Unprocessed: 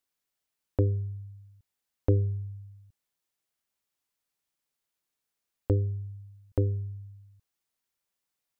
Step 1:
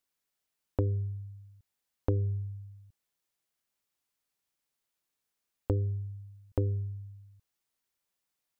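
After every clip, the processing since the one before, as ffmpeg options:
-af "acompressor=threshold=0.0562:ratio=4"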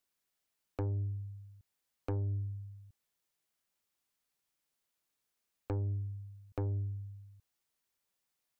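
-filter_complex "[0:a]acrossover=split=210[s0][s1];[s0]alimiter=level_in=1.68:limit=0.0631:level=0:latency=1,volume=0.596[s2];[s2][s1]amix=inputs=2:normalize=0,asoftclip=type=tanh:threshold=0.0335"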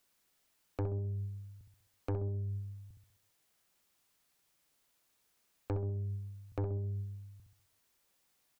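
-filter_complex "[0:a]alimiter=level_in=5.31:limit=0.0631:level=0:latency=1,volume=0.188,asplit=2[s0][s1];[s1]adelay=65,lowpass=f=830:p=1,volume=0.562,asplit=2[s2][s3];[s3]adelay=65,lowpass=f=830:p=1,volume=0.49,asplit=2[s4][s5];[s5]adelay=65,lowpass=f=830:p=1,volume=0.49,asplit=2[s6][s7];[s7]adelay=65,lowpass=f=830:p=1,volume=0.49,asplit=2[s8][s9];[s9]adelay=65,lowpass=f=830:p=1,volume=0.49,asplit=2[s10][s11];[s11]adelay=65,lowpass=f=830:p=1,volume=0.49[s12];[s2][s4][s6][s8][s10][s12]amix=inputs=6:normalize=0[s13];[s0][s13]amix=inputs=2:normalize=0,volume=2.82"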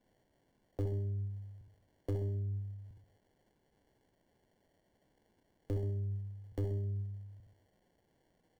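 -filter_complex "[0:a]acrossover=split=230|800[s0][s1][s2];[s2]acrusher=samples=35:mix=1:aa=0.000001[s3];[s0][s1][s3]amix=inputs=3:normalize=0,asoftclip=type=tanh:threshold=0.0473,volume=1.12"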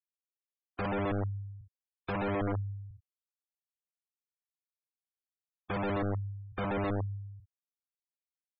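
-af "aeval=exprs='(mod(47.3*val(0)+1,2)-1)/47.3':c=same,afftfilt=real='re*gte(hypot(re,im),0.0126)':imag='im*gte(hypot(re,im),0.0126)':win_size=1024:overlap=0.75,volume=1.88"

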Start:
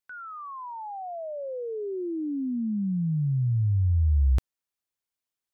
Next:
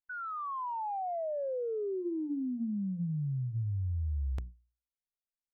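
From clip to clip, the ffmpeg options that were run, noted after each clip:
-af "bandreject=f=60:t=h:w=6,bandreject=f=120:t=h:w=6,bandreject=f=180:t=h:w=6,bandreject=f=240:t=h:w=6,bandreject=f=300:t=h:w=6,bandreject=f=360:t=h:w=6,anlmdn=10,acompressor=threshold=0.0141:ratio=6,volume=1.58"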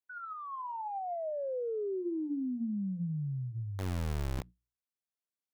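-filter_complex "[0:a]acrossover=split=100|310|720[s0][s1][s2][s3];[s0]acrusher=bits=3:dc=4:mix=0:aa=0.000001[s4];[s3]flanger=delay=5:depth=5.2:regen=65:speed=1:shape=sinusoidal[s5];[s4][s1][s2][s5]amix=inputs=4:normalize=0"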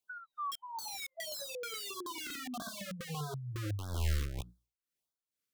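-filter_complex "[0:a]tremolo=f=2.2:d=0.79,acrossover=split=110|1200[s0][s1][s2];[s1]aeval=exprs='(mod(150*val(0)+1,2)-1)/150':c=same[s3];[s0][s3][s2]amix=inputs=3:normalize=0,afftfilt=real='re*(1-between(b*sr/1024,730*pow(2400/730,0.5+0.5*sin(2*PI*1.6*pts/sr))/1.41,730*pow(2400/730,0.5+0.5*sin(2*PI*1.6*pts/sr))*1.41))':imag='im*(1-between(b*sr/1024,730*pow(2400/730,0.5+0.5*sin(2*PI*1.6*pts/sr))/1.41,730*pow(2400/730,0.5+0.5*sin(2*PI*1.6*pts/sr))*1.41))':win_size=1024:overlap=0.75,volume=2.11"

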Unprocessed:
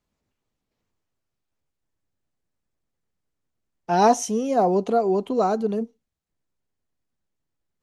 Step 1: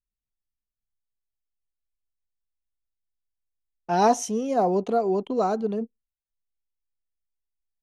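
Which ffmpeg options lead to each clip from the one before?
-af "anlmdn=0.251,volume=0.75"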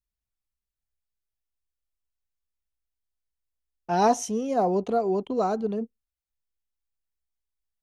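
-af "equalizer=f=66:w=1.7:g=11.5,volume=0.841"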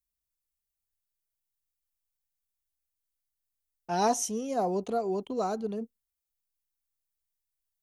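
-af "crystalizer=i=2:c=0,volume=0.531"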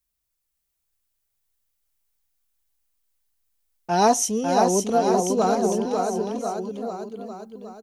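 -af "aecho=1:1:550|1045|1490|1891|2252:0.631|0.398|0.251|0.158|0.1,volume=2.51"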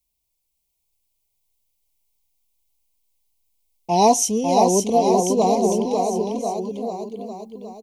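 -af "asuperstop=centerf=1500:order=8:qfactor=1.5,volume=1.41"

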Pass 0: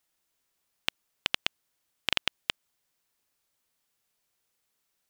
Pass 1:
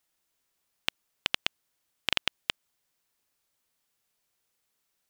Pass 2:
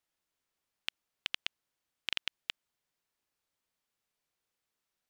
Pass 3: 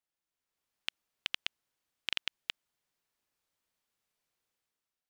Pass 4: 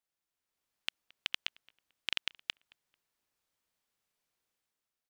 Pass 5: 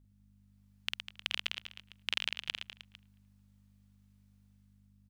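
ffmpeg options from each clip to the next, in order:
-af anull
-filter_complex "[0:a]highshelf=f=6200:g=-7.5,acrossover=split=1600[s0][s1];[s0]alimiter=level_in=1.26:limit=0.0631:level=0:latency=1,volume=0.794[s2];[s2][s1]amix=inputs=2:normalize=0,volume=0.562"
-af "dynaudnorm=f=150:g=7:m=2.66,volume=0.422"
-filter_complex "[0:a]asplit=2[s0][s1];[s1]adelay=221,lowpass=f=2400:p=1,volume=0.0668,asplit=2[s2][s3];[s3]adelay=221,lowpass=f=2400:p=1,volume=0.32[s4];[s0][s2][s4]amix=inputs=3:normalize=0"
-af "aeval=exprs='val(0)+0.000708*(sin(2*PI*50*n/s)+sin(2*PI*2*50*n/s)/2+sin(2*PI*3*50*n/s)/3+sin(2*PI*4*50*n/s)/4+sin(2*PI*5*50*n/s)/5)':c=same,aecho=1:1:50|115|199.5|309.4|452.2:0.631|0.398|0.251|0.158|0.1"

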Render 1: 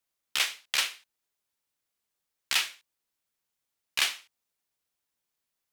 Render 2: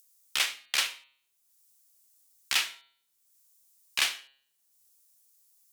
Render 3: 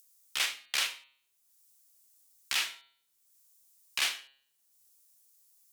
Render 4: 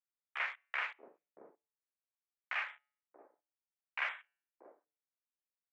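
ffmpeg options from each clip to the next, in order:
-filter_complex "[0:a]bandreject=f=136:t=h:w=4,bandreject=f=272:t=h:w=4,bandreject=f=408:t=h:w=4,bandreject=f=544:t=h:w=4,bandreject=f=680:t=h:w=4,bandreject=f=816:t=h:w=4,bandreject=f=952:t=h:w=4,bandreject=f=1088:t=h:w=4,bandreject=f=1224:t=h:w=4,bandreject=f=1360:t=h:w=4,bandreject=f=1496:t=h:w=4,bandreject=f=1632:t=h:w=4,bandreject=f=1768:t=h:w=4,bandreject=f=1904:t=h:w=4,bandreject=f=2040:t=h:w=4,bandreject=f=2176:t=h:w=4,bandreject=f=2312:t=h:w=4,bandreject=f=2448:t=h:w=4,bandreject=f=2584:t=h:w=4,bandreject=f=2720:t=h:w=4,bandreject=f=2856:t=h:w=4,bandreject=f=2992:t=h:w=4,bandreject=f=3128:t=h:w=4,bandreject=f=3264:t=h:w=4,bandreject=f=3400:t=h:w=4,bandreject=f=3536:t=h:w=4,bandreject=f=3672:t=h:w=4,bandreject=f=3808:t=h:w=4,bandreject=f=3944:t=h:w=4,bandreject=f=4080:t=h:w=4,bandreject=f=4216:t=h:w=4,bandreject=f=4352:t=h:w=4,bandreject=f=4488:t=h:w=4,acrossover=split=5700[s0][s1];[s1]acompressor=mode=upward:threshold=0.00447:ratio=2.5[s2];[s0][s2]amix=inputs=2:normalize=0"
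-af "alimiter=limit=0.141:level=0:latency=1:release=30"
-filter_complex "[0:a]highpass=f=400:t=q:w=0.5412,highpass=f=400:t=q:w=1.307,lowpass=f=2300:t=q:w=0.5176,lowpass=f=2300:t=q:w=0.7071,lowpass=f=2300:t=q:w=1.932,afreqshift=-97,afwtdn=0.00316,acrossover=split=520[s0][s1];[s0]adelay=630[s2];[s2][s1]amix=inputs=2:normalize=0"

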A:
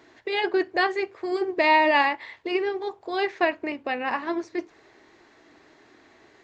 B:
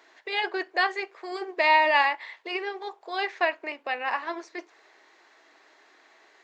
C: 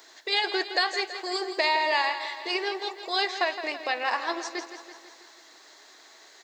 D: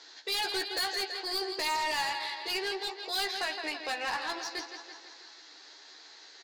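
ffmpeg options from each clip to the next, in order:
-af "highpass=620"
-af "acompressor=threshold=0.0631:ratio=6,aexciter=amount=5:drive=2.8:freq=3600,aecho=1:1:165|330|495|660|825|990|1155:0.282|0.169|0.101|0.0609|0.0365|0.0219|0.0131,volume=1.26"
-filter_complex "[0:a]highpass=250,equalizer=f=360:t=q:w=4:g=-4,equalizer=f=630:t=q:w=4:g=-9,equalizer=f=1100:t=q:w=4:g=-6,equalizer=f=2000:t=q:w=4:g=-4,equalizer=f=4600:t=q:w=4:g=4,lowpass=f=6100:w=0.5412,lowpass=f=6100:w=1.3066,asoftclip=type=tanh:threshold=0.0355,asplit=2[s0][s1];[s1]adelay=13,volume=0.531[s2];[s0][s2]amix=inputs=2:normalize=0"

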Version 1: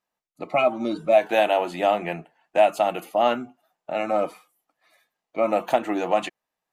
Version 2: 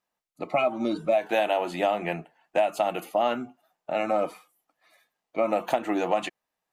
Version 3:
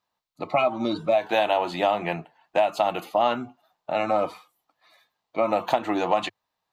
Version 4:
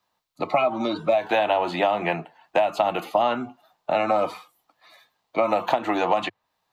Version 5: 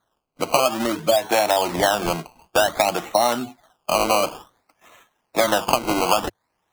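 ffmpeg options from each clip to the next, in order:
-af "acompressor=threshold=0.1:ratio=4"
-af "equalizer=f=100:t=o:w=0.67:g=12,equalizer=f=1000:t=o:w=0.67:g=7,equalizer=f=4000:t=o:w=0.67:g=8,equalizer=f=10000:t=o:w=0.67:g=-6"
-filter_complex "[0:a]acrossover=split=160|530|3300[s0][s1][s2][s3];[s0]acompressor=threshold=0.00224:ratio=4[s4];[s1]acompressor=threshold=0.02:ratio=4[s5];[s2]acompressor=threshold=0.0501:ratio=4[s6];[s3]acompressor=threshold=0.00282:ratio=4[s7];[s4][s5][s6][s7]amix=inputs=4:normalize=0,volume=2"
-af "acrusher=samples=17:mix=1:aa=0.000001:lfo=1:lforange=17:lforate=0.55,volume=1.33"

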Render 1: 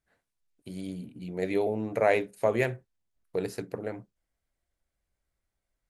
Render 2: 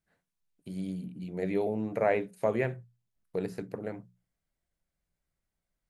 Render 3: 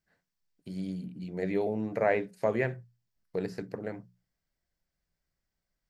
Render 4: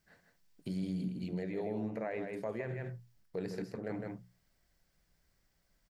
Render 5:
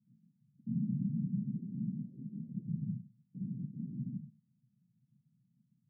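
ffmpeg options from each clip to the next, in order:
-filter_complex "[0:a]acrossover=split=2600[s0][s1];[s1]acompressor=threshold=0.00316:ratio=4:attack=1:release=60[s2];[s0][s2]amix=inputs=2:normalize=0,equalizer=f=170:w=2.7:g=10.5,bandreject=f=60:t=h:w=6,bandreject=f=120:t=h:w=6,bandreject=f=180:t=h:w=6,volume=0.708"
-af "superequalizer=11b=1.41:14b=1.78:16b=0.501"
-af "areverse,acompressor=threshold=0.0141:ratio=12,areverse,aecho=1:1:75|157:0.106|0.447,alimiter=level_in=4.47:limit=0.0631:level=0:latency=1:release=375,volume=0.224,volume=2.82"
-af "asoftclip=type=tanh:threshold=0.0112,afftfilt=real='hypot(re,im)*cos(2*PI*random(0))':imag='hypot(re,im)*sin(2*PI*random(1))':win_size=512:overlap=0.75,asuperpass=centerf=170:order=8:qfactor=1.5,volume=6.31"

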